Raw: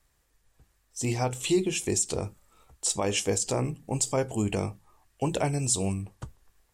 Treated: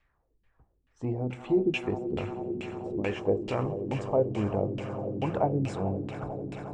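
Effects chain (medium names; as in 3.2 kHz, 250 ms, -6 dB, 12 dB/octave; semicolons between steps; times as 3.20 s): echo with a slow build-up 89 ms, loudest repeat 8, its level -16 dB; LFO low-pass saw down 2.3 Hz 240–2800 Hz; trim -3 dB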